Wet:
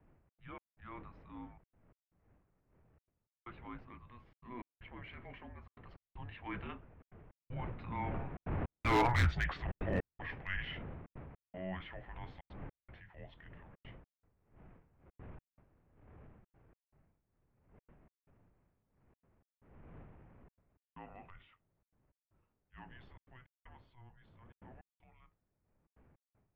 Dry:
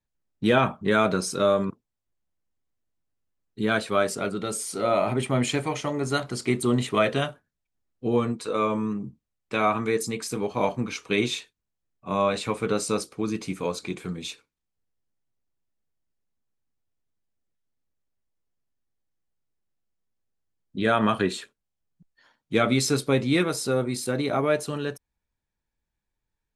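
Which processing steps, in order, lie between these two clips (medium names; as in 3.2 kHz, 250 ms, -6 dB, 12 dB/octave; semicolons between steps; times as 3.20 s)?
wind noise 240 Hz -25 dBFS; Doppler pass-by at 9.27 s, 25 m/s, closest 3.7 m; tilt EQ +2 dB/octave; in parallel at -2.5 dB: compression, threshold -50 dBFS, peak gain reduction 25 dB; on the sum: mistuned SSB -370 Hz 270–2900 Hz; hard clipper -29 dBFS, distortion -8 dB; transient shaper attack -6 dB, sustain +3 dB; trance gate "xxx.xx..xxxxxx" 156 bpm -60 dB; trim +5 dB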